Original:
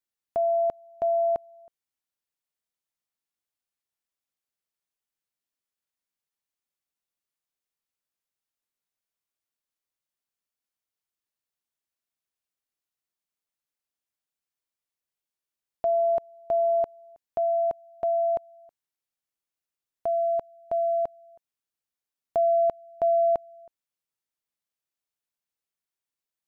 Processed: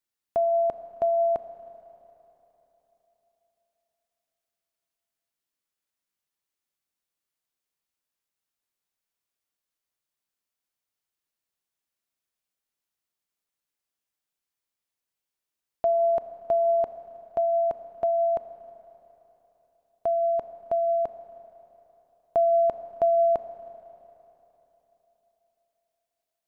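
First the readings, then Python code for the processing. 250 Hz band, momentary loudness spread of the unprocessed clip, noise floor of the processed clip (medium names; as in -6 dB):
no reading, 9 LU, under -85 dBFS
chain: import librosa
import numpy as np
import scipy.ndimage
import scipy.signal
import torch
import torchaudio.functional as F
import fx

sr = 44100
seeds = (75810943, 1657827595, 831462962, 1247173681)

y = fx.rev_schroeder(x, sr, rt60_s=3.7, comb_ms=26, drr_db=10.5)
y = F.gain(torch.from_numpy(y), 2.0).numpy()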